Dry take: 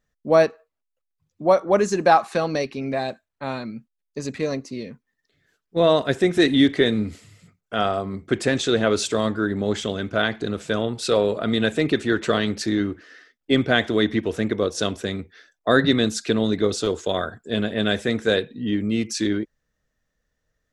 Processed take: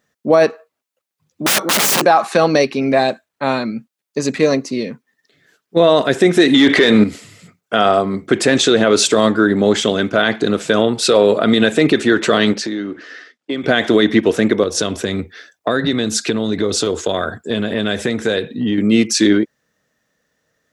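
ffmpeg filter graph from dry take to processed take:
-filter_complex "[0:a]asettb=1/sr,asplit=3[a][b][c];[a]atrim=end=1.464[d];[b]atrim=start=1.46:end=2.05,asetpts=PTS-STARTPTS,afade=t=in:d=0.004:c=qsin,afade=t=out:st=0.586:d=0.004:c=qsin,highshelf=f=2.6k:g=10,bandreject=f=50:t=h:w=6,bandreject=f=100:t=h:w=6,bandreject=f=150:t=h:w=6,bandreject=f=200:t=h:w=6,bandreject=f=250:t=h:w=6,bandreject=f=300:t=h:w=6,bandreject=f=350:t=h:w=6,aeval=exprs='(mod(11.2*val(0)+1,2)-1)/11.2':c=same[e];[c]atrim=start=2.046[f];[d][e]acrossfade=d=0.004:c1=hsin:c2=qsin[g];[g][f]acrossfade=d=0.004:c1=qsin:c2=hsin,asettb=1/sr,asplit=3[h][i][j];[h]atrim=end=6.544[k];[i]atrim=start=6.54:end=7.04,asetpts=PTS-STARTPTS,afade=t=in:d=0.004:c=qsin,afade=t=out:st=0.496:d=0.004:c=qsin,equalizer=f=1.5k:w=0.32:g=8,acontrast=39[l];[j]atrim=start=7.036[m];[k][l]acrossfade=d=0.004:c1=hsin:c2=qsin[n];[n][m]acrossfade=d=0.004:c1=qsin:c2=hsin,asettb=1/sr,asplit=3[o][p][q];[o]atrim=end=12.534[r];[p]atrim=start=12.53:end=13.64,asetpts=PTS-STARTPTS,afade=t=in:d=0.004:c=qsin,afade=t=out:st=1.106:d=0.004:c=qsin,acompressor=threshold=-30dB:ratio=5:attack=3.2:release=140:knee=1:detection=peak,highpass=140,lowpass=7.1k[s];[q]atrim=start=13.636[t];[r][s]acrossfade=d=0.004:c1=hsin:c2=qsin[u];[u][t]acrossfade=d=0.004:c1=qsin:c2=hsin,asettb=1/sr,asplit=3[v][w][x];[v]atrim=end=14.634[y];[w]atrim=start=14.63:end=18.78,asetpts=PTS-STARTPTS,afade=t=in:d=0.004:c=qsin,afade=t=out:st=4.146:d=0.004:c=qsin,equalizer=f=81:t=o:w=1:g=10,acompressor=threshold=-24dB:ratio=5:attack=3.2:release=140:knee=1:detection=peak[z];[x]atrim=start=18.776[aa];[y][z]acrossfade=d=0.004:c1=hsin:c2=qsin[ab];[ab][aa]acrossfade=d=0.004:c1=qsin:c2=hsin,highpass=170,alimiter=level_in=12.5dB:limit=-1dB:release=50:level=0:latency=1,volume=-1dB"

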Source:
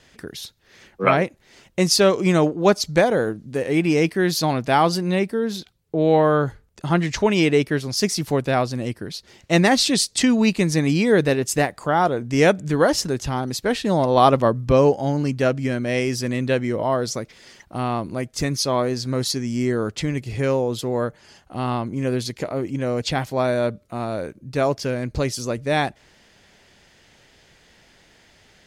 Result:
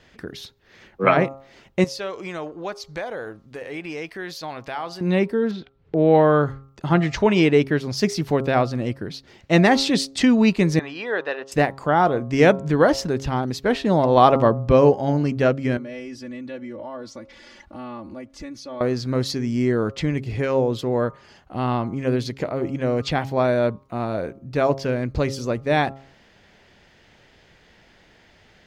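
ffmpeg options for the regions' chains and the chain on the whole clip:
-filter_complex "[0:a]asettb=1/sr,asplit=3[a][b][c];[a]atrim=end=1.844[d];[b]atrim=start=1.84:end=5.01,asetpts=PTS-STARTPTS,afade=t=in:d=0.004:c=qsin,afade=t=out:st=3.166:d=0.004:c=qsin,equalizer=f=180:t=o:w=2.6:g=-13.5,acompressor=threshold=-34dB:ratio=2:attack=3.2:release=140:knee=1:detection=peak[e];[c]atrim=start=5.006[f];[d][e]acrossfade=d=0.004:c1=hsin:c2=qsin[g];[g][f]acrossfade=d=0.004:c1=qsin:c2=hsin,asettb=1/sr,asplit=3[h][i][j];[h]atrim=end=5.514[k];[i]atrim=start=5.51:end=6.15,asetpts=PTS-STARTPTS,afade=t=in:d=0.004:c=qsin,afade=t=out:st=0.636:d=0.004:c=qsin,lowpass=2.8k,agate=range=-14dB:threshold=-53dB:ratio=16:release=100:detection=peak,acompressor=mode=upward:threshold=-35dB:ratio=2.5:attack=3.2:release=140:knee=2.83:detection=peak[l];[j]atrim=start=6.146[m];[k][l]acrossfade=d=0.004:c1=hsin:c2=qsin[n];[n][m]acrossfade=d=0.004:c1=qsin:c2=hsin,asettb=1/sr,asplit=3[o][p][q];[o]atrim=end=10.794[r];[p]atrim=start=10.79:end=11.52,asetpts=PTS-STARTPTS,afade=t=in:d=0.004:c=qsin,afade=t=out:st=0.726:d=0.004:c=qsin,highpass=790,lowpass=2.9k,bandreject=f=2.2k:w=5.7[s];[q]atrim=start=11.516[t];[r][s]acrossfade=d=0.004:c1=hsin:c2=qsin[u];[u][t]acrossfade=d=0.004:c1=qsin:c2=hsin,asettb=1/sr,asplit=3[v][w][x];[v]atrim=end=15.774[y];[w]atrim=start=15.77:end=18.81,asetpts=PTS-STARTPTS,afade=t=in:d=0.004:c=qsin,afade=t=out:st=3.036:d=0.004:c=qsin,lowpass=11k,aecho=1:1:3.5:0.94,atrim=end_sample=134064,acompressor=threshold=-41dB:ratio=2.5:attack=3.2:release=140:knee=1:detection=peak[z];[x]atrim=start=18.806[aa];[y][z]acrossfade=d=0.004:c1=hsin:c2=qsin[ab];[ab][aa]acrossfade=d=0.004:c1=qsin:c2=hsin,equalizer=f=9.9k:w=0.6:g=-13.5,bandreject=f=135.5:t=h:w=4,bandreject=f=271:t=h:w=4,bandreject=f=406.5:t=h:w=4,bandreject=f=542:t=h:w=4,bandreject=f=677.5:t=h:w=4,bandreject=f=813:t=h:w=4,bandreject=f=948.5:t=h:w=4,bandreject=f=1.084k:t=h:w=4,bandreject=f=1.2195k:t=h:w=4,bandreject=f=1.355k:t=h:w=4,volume=1.5dB"

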